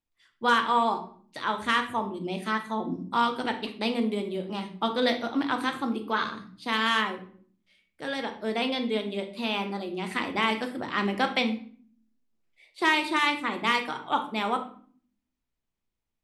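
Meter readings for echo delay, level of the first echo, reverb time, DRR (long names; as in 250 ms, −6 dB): no echo audible, no echo audible, 0.50 s, 5.0 dB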